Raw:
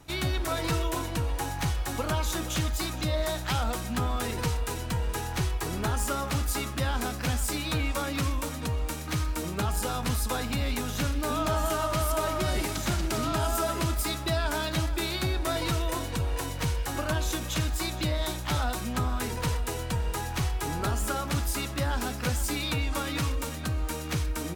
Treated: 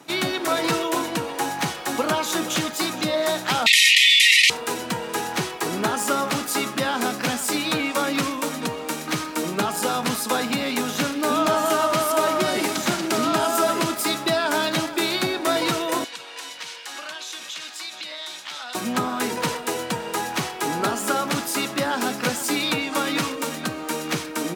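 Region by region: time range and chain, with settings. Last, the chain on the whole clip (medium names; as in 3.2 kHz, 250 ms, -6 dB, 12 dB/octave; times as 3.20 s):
3.66–4.50 s: brick-wall FIR band-pass 1.8–13 kHz + peaking EQ 2.6 kHz +14.5 dB 2.2 oct + level flattener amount 100%
16.04–18.75 s: band-pass filter 3.8 kHz, Q 0.82 + compression 4:1, threshold -38 dBFS
whole clip: high-pass 190 Hz 24 dB/octave; treble shelf 8.6 kHz -4.5 dB; trim +8.5 dB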